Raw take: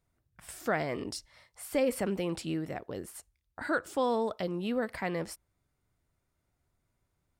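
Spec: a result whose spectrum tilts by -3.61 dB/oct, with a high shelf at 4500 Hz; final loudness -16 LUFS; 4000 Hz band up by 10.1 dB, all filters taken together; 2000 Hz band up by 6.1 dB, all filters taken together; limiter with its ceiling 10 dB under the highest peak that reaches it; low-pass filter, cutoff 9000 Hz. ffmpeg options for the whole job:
-af "lowpass=9k,equalizer=f=2k:t=o:g=5,equalizer=f=4k:t=o:g=8.5,highshelf=f=4.5k:g=6.5,volume=19dB,alimiter=limit=-4.5dB:level=0:latency=1"

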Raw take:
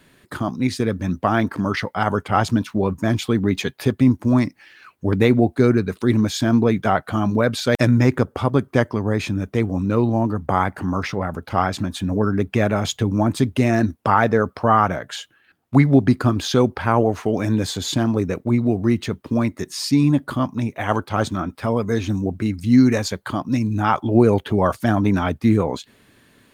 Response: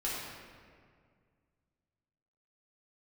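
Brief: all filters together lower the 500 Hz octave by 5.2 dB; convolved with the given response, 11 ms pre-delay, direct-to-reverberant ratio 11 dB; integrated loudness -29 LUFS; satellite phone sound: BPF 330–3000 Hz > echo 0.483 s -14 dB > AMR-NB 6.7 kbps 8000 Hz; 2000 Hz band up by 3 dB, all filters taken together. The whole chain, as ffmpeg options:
-filter_complex "[0:a]equalizer=f=500:t=o:g=-5.5,equalizer=f=2k:t=o:g=5,asplit=2[a][b];[1:a]atrim=start_sample=2205,adelay=11[c];[b][c]afir=irnorm=-1:irlink=0,volume=-16.5dB[d];[a][d]amix=inputs=2:normalize=0,highpass=330,lowpass=3k,aecho=1:1:483:0.2,volume=-3.5dB" -ar 8000 -c:a libopencore_amrnb -b:a 6700

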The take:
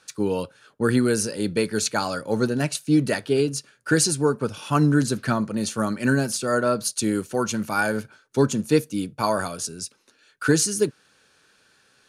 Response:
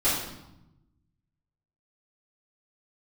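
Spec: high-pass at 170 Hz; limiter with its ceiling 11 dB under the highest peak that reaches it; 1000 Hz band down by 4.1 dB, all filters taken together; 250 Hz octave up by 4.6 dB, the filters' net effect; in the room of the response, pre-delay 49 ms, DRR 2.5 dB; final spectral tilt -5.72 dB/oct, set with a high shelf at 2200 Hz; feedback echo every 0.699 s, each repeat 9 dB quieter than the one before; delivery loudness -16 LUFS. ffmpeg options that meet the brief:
-filter_complex "[0:a]highpass=170,equalizer=f=250:t=o:g=7,equalizer=f=1k:t=o:g=-4,highshelf=f=2.2k:g=-7.5,alimiter=limit=-15.5dB:level=0:latency=1,aecho=1:1:699|1398|2097|2796:0.355|0.124|0.0435|0.0152,asplit=2[a][b];[1:a]atrim=start_sample=2205,adelay=49[c];[b][c]afir=irnorm=-1:irlink=0,volume=-15.5dB[d];[a][d]amix=inputs=2:normalize=0,volume=6.5dB"

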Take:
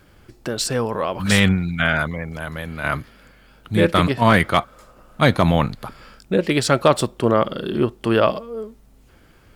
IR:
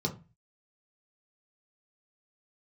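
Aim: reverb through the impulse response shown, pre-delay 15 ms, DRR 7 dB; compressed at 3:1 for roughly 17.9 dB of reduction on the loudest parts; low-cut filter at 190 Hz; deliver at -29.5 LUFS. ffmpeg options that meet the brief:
-filter_complex "[0:a]highpass=190,acompressor=threshold=-36dB:ratio=3,asplit=2[a][b];[1:a]atrim=start_sample=2205,adelay=15[c];[b][c]afir=irnorm=-1:irlink=0,volume=-12dB[d];[a][d]amix=inputs=2:normalize=0,volume=4dB"

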